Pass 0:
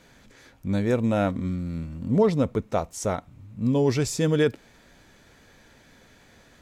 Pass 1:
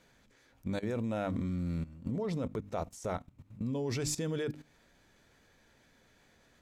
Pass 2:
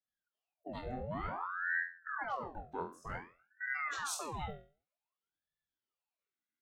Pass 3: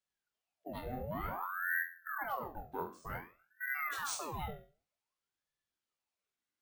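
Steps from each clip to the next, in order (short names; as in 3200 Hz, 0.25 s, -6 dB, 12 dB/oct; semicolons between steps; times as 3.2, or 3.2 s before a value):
notches 50/100/150/200/250/300 Hz; level quantiser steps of 16 dB; gain -1.5 dB
per-bin expansion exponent 2; flutter echo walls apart 4 m, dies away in 0.37 s; ring modulator with a swept carrier 1000 Hz, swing 75%, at 0.54 Hz; gain -1 dB
reverb RT60 0.20 s, pre-delay 27 ms, DRR 14 dB; careless resampling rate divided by 3×, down none, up hold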